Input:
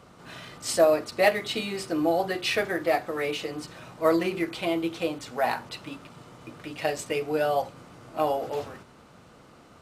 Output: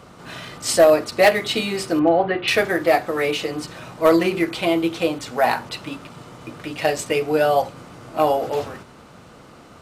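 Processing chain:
0:01.99–0:02.48: low-pass filter 2,800 Hz 24 dB per octave
gain into a clipping stage and back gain 14 dB
level +7.5 dB

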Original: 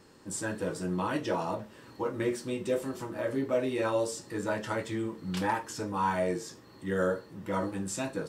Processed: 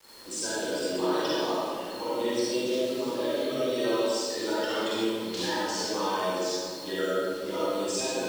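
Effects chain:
spectral magnitudes quantised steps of 30 dB
Chebyshev band-pass filter 360–5,000 Hz, order 2
high shelf with overshoot 2,500 Hz +8.5 dB, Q 1.5
downward compressor 4 to 1, threshold −35 dBFS, peak gain reduction 9.5 dB
bit reduction 9 bits
convolution reverb RT60 2.0 s, pre-delay 38 ms, DRR −9 dB

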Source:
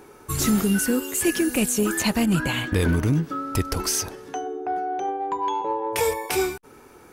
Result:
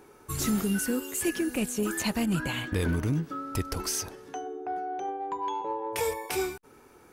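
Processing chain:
0:01.29–0:01.83: high-shelf EQ 4,500 Hz −5.5 dB
level −6.5 dB

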